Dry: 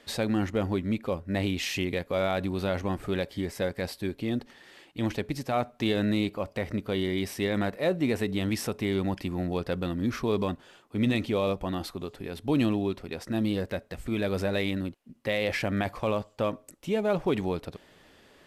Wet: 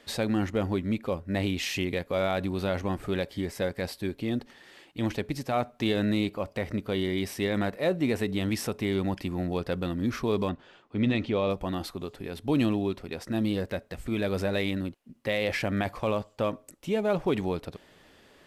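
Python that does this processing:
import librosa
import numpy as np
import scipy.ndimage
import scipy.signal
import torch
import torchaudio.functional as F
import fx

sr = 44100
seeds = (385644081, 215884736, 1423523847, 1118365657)

y = fx.lowpass(x, sr, hz=4200.0, slope=12, at=(10.49, 11.5))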